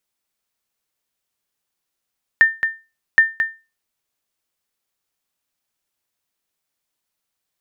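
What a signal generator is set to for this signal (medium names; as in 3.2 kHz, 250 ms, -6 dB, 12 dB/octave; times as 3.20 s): sonar ping 1.8 kHz, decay 0.28 s, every 0.77 s, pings 2, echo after 0.22 s, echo -8 dB -3.5 dBFS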